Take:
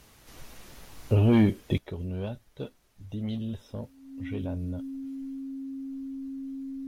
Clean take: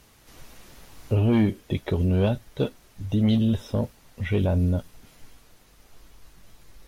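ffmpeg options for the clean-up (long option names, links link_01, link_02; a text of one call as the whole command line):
ffmpeg -i in.wav -af "bandreject=frequency=270:width=30,asetnsamples=nb_out_samples=441:pad=0,asendcmd='1.78 volume volume 12dB',volume=0dB" out.wav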